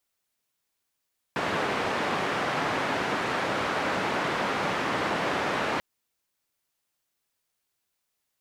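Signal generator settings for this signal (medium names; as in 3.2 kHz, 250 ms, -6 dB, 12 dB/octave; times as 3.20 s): noise band 140–1500 Hz, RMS -28 dBFS 4.44 s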